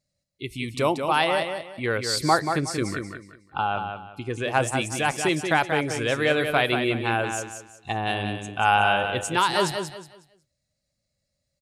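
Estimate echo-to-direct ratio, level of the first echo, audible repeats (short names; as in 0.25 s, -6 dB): -6.0 dB, -6.5 dB, 3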